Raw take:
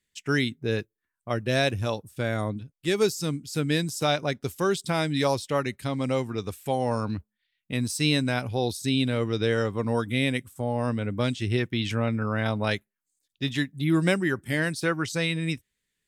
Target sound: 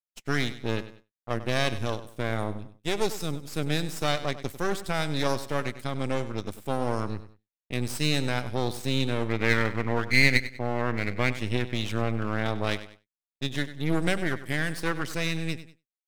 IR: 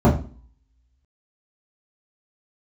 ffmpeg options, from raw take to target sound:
-filter_complex "[0:a]asettb=1/sr,asplit=3[s0][s1][s2];[s0]atrim=end=9.294[s3];[s1]atrim=start=9.29:end=11.33,asetpts=PTS-STARTPTS,afade=t=in:d=0.004:c=qsin,afade=t=out:st=2.036:d=0.004:c=qsin,lowpass=f=2100:t=q:w=7.7[s4];[s2]atrim=start=11.326[s5];[s3][s4]acrossfade=d=0.004:c1=hsin:c2=qsin[s6];[s6][s5]acrossfade=d=0.004:c1=qsin:c2=hsin,aeval=exprs='max(val(0),0)':c=same,aecho=1:1:97|194|291:0.2|0.0698|0.0244,agate=range=0.0224:threshold=0.00631:ratio=3:detection=peak"

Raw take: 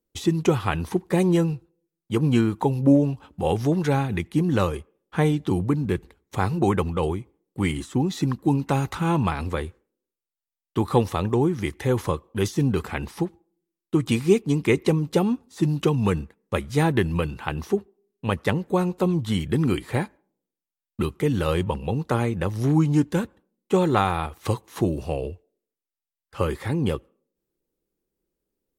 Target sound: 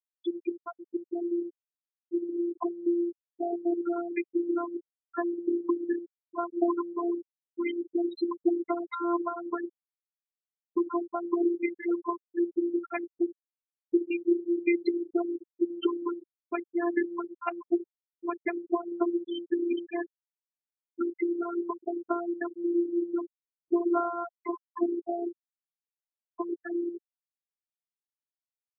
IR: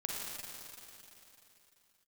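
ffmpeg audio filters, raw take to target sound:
-filter_complex "[0:a]acompressor=threshold=0.0562:ratio=6,highshelf=f=7200:g=-2.5,bandreject=f=60:t=h:w=6,bandreject=f=120:t=h:w=6,bandreject=f=180:t=h:w=6,bandreject=f=240:t=h:w=6,bandreject=f=300:t=h:w=6,bandreject=f=360:t=h:w=6,bandreject=f=420:t=h:w=6,bandreject=f=480:t=h:w=6,bandreject=f=540:t=h:w=6,bandreject=f=600:t=h:w=6,asplit=2[s0][s1];[s1]aecho=0:1:70|140|210|280:0.188|0.0753|0.0301|0.0121[s2];[s0][s2]amix=inputs=2:normalize=0,afftfilt=real='hypot(re,im)*cos(PI*b)':imag='0':win_size=512:overlap=0.75,highpass=f=120:w=0.5412,highpass=f=120:w=1.3066,equalizer=f=190:t=o:w=0.24:g=-15,dynaudnorm=f=470:g=11:m=1.88,bandreject=f=4600:w=11,afftfilt=real='re*gte(hypot(re,im),0.112)':imag='im*gte(hypot(re,im),0.112)':win_size=1024:overlap=0.75,volume=1.26" -ar 24000 -c:a libmp3lame -b:a 24k

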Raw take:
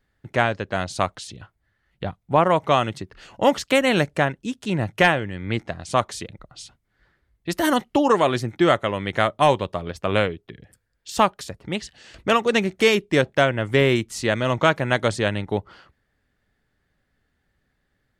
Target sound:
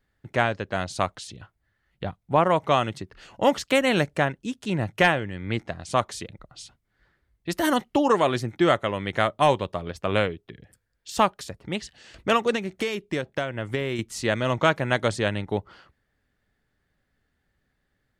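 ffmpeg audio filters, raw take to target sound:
-filter_complex "[0:a]asettb=1/sr,asplit=3[s0][s1][s2];[s0]atrim=end=12.544[s3];[s1]atrim=start=12.54:end=13.99,asetpts=PTS-STARTPTS,afade=t=in:d=0.004:c=qsin,afade=t=out:st=1.446:d=0.004:c=qsin,acompressor=threshold=0.0794:ratio=6[s4];[s2]atrim=start=13.986[s5];[s3][s4]acrossfade=d=0.004:c1=hsin:c2=qsin[s6];[s6][s5]acrossfade=d=0.004:c1=qsin:c2=hsin,volume=0.75"

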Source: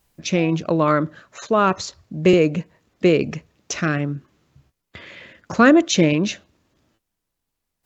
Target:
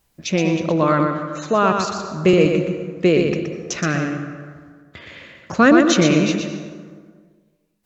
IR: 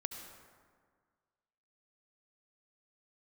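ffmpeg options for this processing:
-filter_complex "[0:a]asplit=2[s0][s1];[1:a]atrim=start_sample=2205,adelay=121[s2];[s1][s2]afir=irnorm=-1:irlink=0,volume=0.708[s3];[s0][s3]amix=inputs=2:normalize=0"

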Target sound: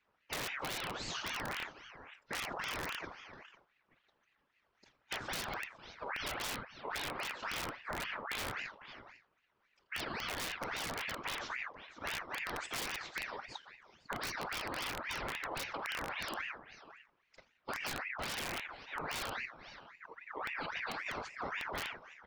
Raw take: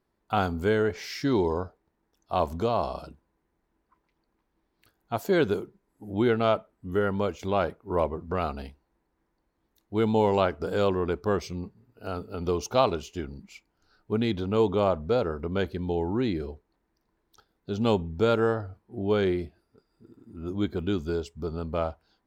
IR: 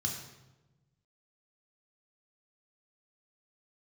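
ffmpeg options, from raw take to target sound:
-filter_complex "[0:a]highpass=120,equalizer=f=240:t=q:w=4:g=5,equalizer=f=380:t=q:w=4:g=-6,equalizer=f=540:t=q:w=4:g=7,equalizer=f=1100:t=q:w=4:g=-4,equalizer=f=2200:t=q:w=4:g=4,lowpass=f=4700:w=0.5412,lowpass=f=4700:w=1.3066,asplit=2[s0][s1];[s1]aecho=0:1:48|81:0.141|0.126[s2];[s0][s2]amix=inputs=2:normalize=0,afftfilt=real='hypot(re,im)*cos(2*PI*random(0))':imag='hypot(re,im)*sin(2*PI*random(1))':win_size=512:overlap=0.75,afftfilt=real='re*lt(hypot(re,im),0.0891)':imag='im*lt(hypot(re,im),0.0891)':win_size=1024:overlap=0.75,asplit=2[s3][s4];[s4]aecho=0:1:501:0.112[s5];[s3][s5]amix=inputs=2:normalize=0,aeval=exprs='(mod(37.6*val(0)+1,2)-1)/37.6':c=same,acompressor=threshold=0.00794:ratio=5,aeval=exprs='val(0)*sin(2*PI*1500*n/s+1500*0.55/3.7*sin(2*PI*3.7*n/s))':c=same,volume=2.51"

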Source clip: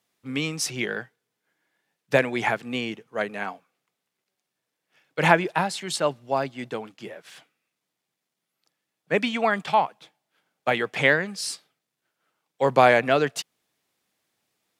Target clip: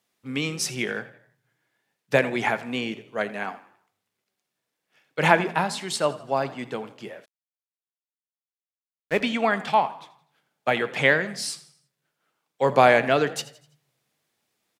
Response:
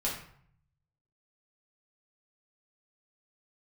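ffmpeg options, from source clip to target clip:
-filter_complex "[0:a]asplit=5[s0][s1][s2][s3][s4];[s1]adelay=83,afreqshift=39,volume=0.126[s5];[s2]adelay=166,afreqshift=78,volume=0.0556[s6];[s3]adelay=249,afreqshift=117,volume=0.0243[s7];[s4]adelay=332,afreqshift=156,volume=0.0107[s8];[s0][s5][s6][s7][s8]amix=inputs=5:normalize=0,asplit=2[s9][s10];[1:a]atrim=start_sample=2205,asetrate=42336,aresample=44100[s11];[s10][s11]afir=irnorm=-1:irlink=0,volume=0.119[s12];[s9][s12]amix=inputs=2:normalize=0,asplit=3[s13][s14][s15];[s13]afade=t=out:st=7.24:d=0.02[s16];[s14]aeval=exprs='sgn(val(0))*max(abs(val(0))-0.02,0)':c=same,afade=t=in:st=7.24:d=0.02,afade=t=out:st=9.2:d=0.02[s17];[s15]afade=t=in:st=9.2:d=0.02[s18];[s16][s17][s18]amix=inputs=3:normalize=0,volume=0.891"

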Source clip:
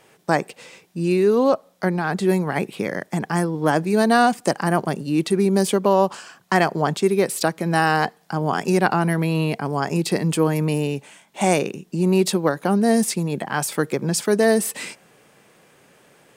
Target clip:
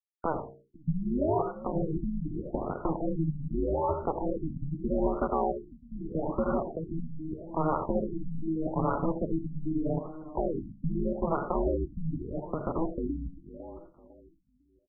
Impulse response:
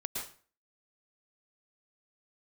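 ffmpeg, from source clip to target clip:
-filter_complex "[0:a]highpass=f=40:w=0.5412,highpass=f=40:w=1.3066,aresample=11025,acrusher=bits=3:mix=0:aa=0.5,aresample=44100,tiltshelf=f=1400:g=-6,bandreject=f=60:t=h:w=6,bandreject=f=120:t=h:w=6,bandreject=f=180:t=h:w=6,bandreject=f=240:t=h:w=6,bandreject=f=300:t=h:w=6,bandreject=f=360:t=h:w=6,bandreject=f=420:t=h:w=6,bandreject=f=480:t=h:w=6,bandreject=f=540:t=h:w=6,acrossover=split=600|2600[s0][s1][s2];[s0]acompressor=threshold=0.0158:ratio=4[s3];[s1]acompressor=threshold=0.0316:ratio=4[s4];[s2]acompressor=threshold=0.00794:ratio=4[s5];[s3][s4][s5]amix=inputs=3:normalize=0,alimiter=limit=0.0891:level=0:latency=1:release=96,atempo=1.1,aemphasis=mode=reproduction:type=bsi,aeval=exprs='val(0)*sin(2*PI*160*n/s)':c=same,asplit=2[s6][s7];[s7]adelay=502,lowpass=f=860:p=1,volume=0.178,asplit=2[s8][s9];[s9]adelay=502,lowpass=f=860:p=1,volume=0.33,asplit=2[s10][s11];[s11]adelay=502,lowpass=f=860:p=1,volume=0.33[s12];[s6][s8][s10][s12]amix=inputs=4:normalize=0,asplit=2[s13][s14];[1:a]atrim=start_sample=2205,asetrate=66150,aresample=44100,lowshelf=f=150:g=-10.5[s15];[s14][s15]afir=irnorm=-1:irlink=0,volume=0.794[s16];[s13][s16]amix=inputs=2:normalize=0,afftfilt=real='re*lt(b*sr/1024,270*pow(1500/270,0.5+0.5*sin(2*PI*0.81*pts/sr)))':imag='im*lt(b*sr/1024,270*pow(1500/270,0.5+0.5*sin(2*PI*0.81*pts/sr)))':win_size=1024:overlap=0.75,volume=1.5"

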